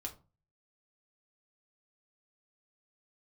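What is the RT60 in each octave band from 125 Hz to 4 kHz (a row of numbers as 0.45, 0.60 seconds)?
0.60, 0.45, 0.35, 0.35, 0.20, 0.20 seconds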